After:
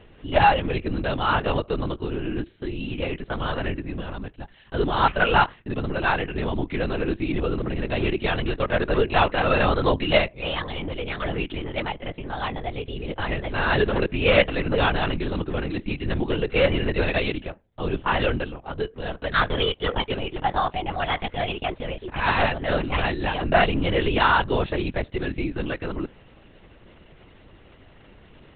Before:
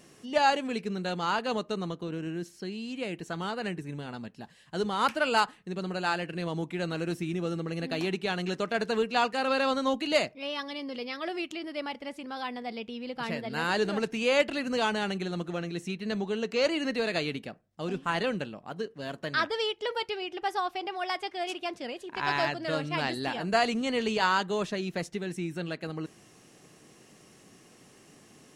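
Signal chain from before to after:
linear-prediction vocoder at 8 kHz whisper
level +7 dB

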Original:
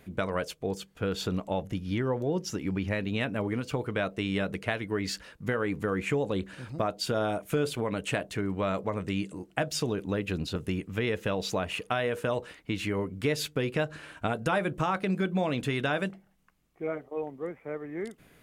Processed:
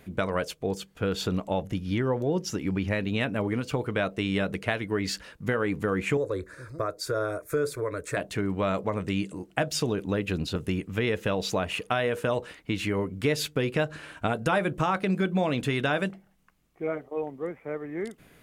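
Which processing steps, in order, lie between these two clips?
0:06.17–0:08.17: phaser with its sweep stopped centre 800 Hz, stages 6
level +2.5 dB

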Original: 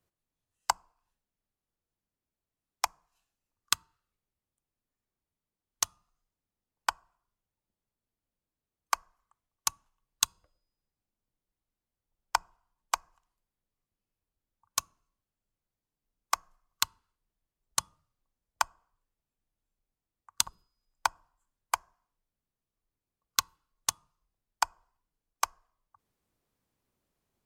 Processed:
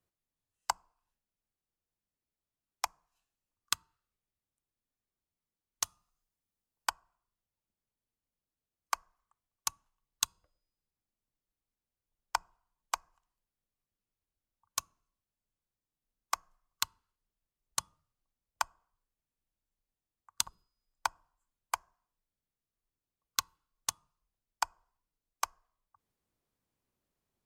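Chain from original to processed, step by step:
0:05.83–0:06.90: high-shelf EQ 5,200 Hz +7 dB
level −4.5 dB

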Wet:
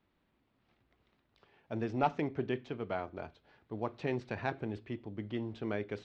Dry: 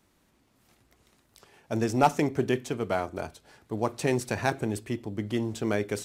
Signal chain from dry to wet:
low-pass filter 3,800 Hz 24 dB per octave
level −8.5 dB

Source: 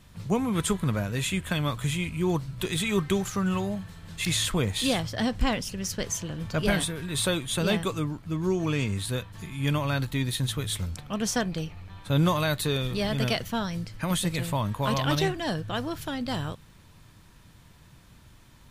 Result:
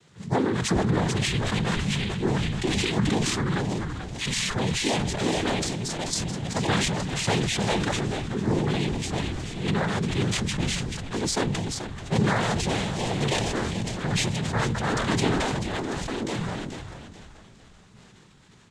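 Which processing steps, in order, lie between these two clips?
cochlear-implant simulation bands 6
echo with shifted repeats 434 ms, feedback 43%, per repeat −65 Hz, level −10 dB
level that may fall only so fast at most 23 dB per second

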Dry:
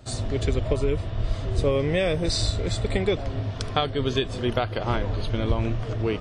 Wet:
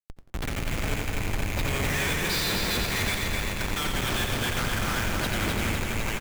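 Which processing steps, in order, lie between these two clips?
loose part that buzzes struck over −29 dBFS, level −29 dBFS
elliptic band-pass filter 1,600–8,900 Hz, stop band 40 dB
spectral tilt −4 dB per octave
automatic gain control gain up to 13 dB
comparator with hysteresis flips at −31.5 dBFS
repeating echo 254 ms, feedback 60%, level −4 dB
on a send at −17 dB: convolution reverb RT60 0.90 s, pre-delay 62 ms
on the sum: feedback echo at a low word length 88 ms, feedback 35%, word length 10 bits, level −5.5 dB
level +1 dB

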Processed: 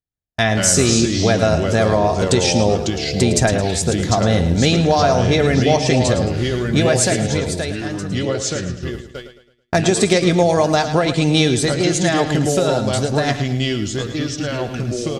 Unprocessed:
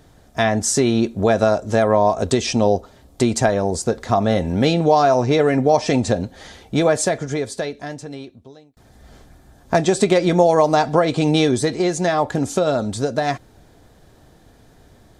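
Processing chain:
delay with pitch and tempo change per echo 111 ms, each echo −3 semitones, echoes 2, each echo −6 dB
noise gate −29 dBFS, range −47 dB
graphic EQ with 10 bands 250 Hz −5 dB, 500 Hz −5 dB, 1,000 Hz −8 dB
on a send: repeating echo 109 ms, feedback 38%, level −10.5 dB
on the sum: level +5.5 dB

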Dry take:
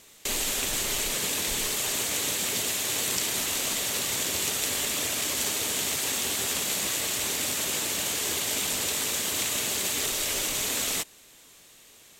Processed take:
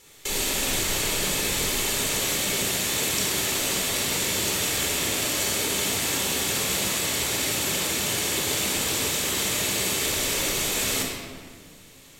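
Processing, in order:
rectangular room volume 2,300 cubic metres, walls mixed, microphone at 4.2 metres
level −2.5 dB

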